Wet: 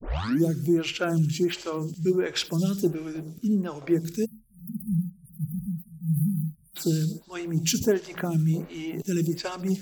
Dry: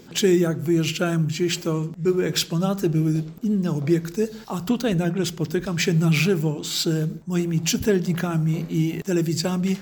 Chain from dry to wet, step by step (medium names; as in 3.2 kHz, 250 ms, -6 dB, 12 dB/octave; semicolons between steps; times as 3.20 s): tape start-up on the opening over 0.44 s; on a send: feedback echo behind a high-pass 71 ms, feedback 69%, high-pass 5.1 kHz, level -9.5 dB; on the sum: spectral selection erased 4.25–6.76 s, 220–8900 Hz; lamp-driven phase shifter 1.4 Hz; trim -1 dB